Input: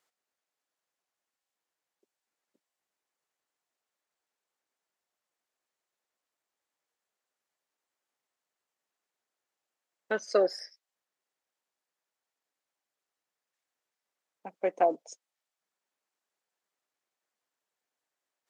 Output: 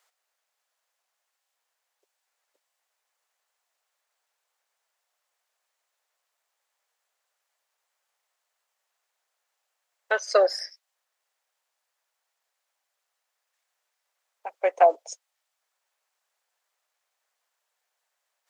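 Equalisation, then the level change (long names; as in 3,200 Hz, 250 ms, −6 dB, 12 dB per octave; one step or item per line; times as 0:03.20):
high-pass filter 540 Hz 24 dB per octave
+8.5 dB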